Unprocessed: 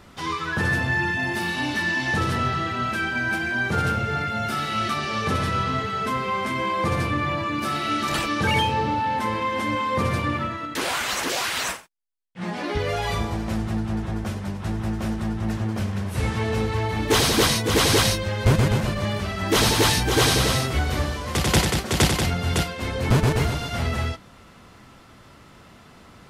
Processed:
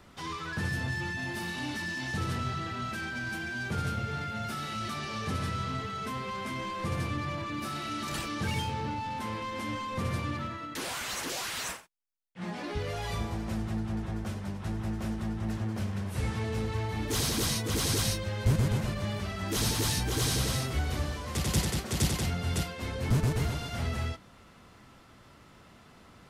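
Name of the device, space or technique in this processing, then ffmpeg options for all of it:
one-band saturation: -filter_complex "[0:a]acrossover=split=260|4600[s0][s1][s2];[s1]asoftclip=type=tanh:threshold=0.0398[s3];[s0][s3][s2]amix=inputs=3:normalize=0,volume=0.473"

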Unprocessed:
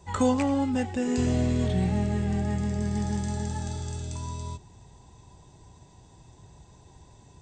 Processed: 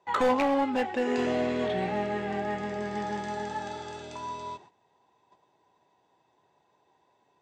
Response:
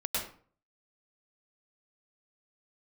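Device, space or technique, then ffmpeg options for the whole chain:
walkie-talkie: -af "highpass=460,lowpass=2700,asoftclip=type=hard:threshold=0.0473,agate=range=0.2:threshold=0.00141:ratio=16:detection=peak,volume=2.24"

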